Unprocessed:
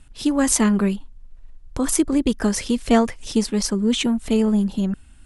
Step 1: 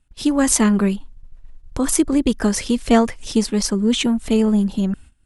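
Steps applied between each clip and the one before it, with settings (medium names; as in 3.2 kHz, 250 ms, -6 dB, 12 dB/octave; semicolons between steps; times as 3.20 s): gate -40 dBFS, range -18 dB; trim +2 dB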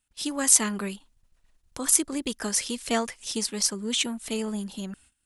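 tilt EQ +3 dB/octave; trim -8.5 dB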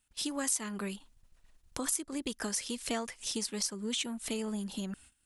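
compression 3:1, threshold -36 dBFS, peak gain reduction 17 dB; trim +1.5 dB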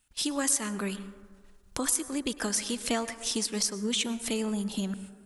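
plate-style reverb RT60 1.6 s, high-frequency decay 0.3×, pre-delay 90 ms, DRR 13.5 dB; trim +5 dB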